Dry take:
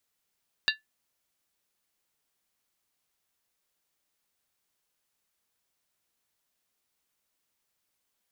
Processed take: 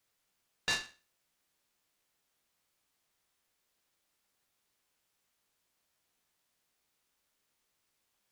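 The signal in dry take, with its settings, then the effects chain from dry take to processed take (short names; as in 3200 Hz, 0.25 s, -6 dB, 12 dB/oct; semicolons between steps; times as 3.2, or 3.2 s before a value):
skin hit, lowest mode 1740 Hz, modes 5, decay 0.16 s, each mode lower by 1 dB, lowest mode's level -21 dB
spectral trails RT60 0.35 s; limiter -19.5 dBFS; noise-modulated delay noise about 1900 Hz, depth 0.031 ms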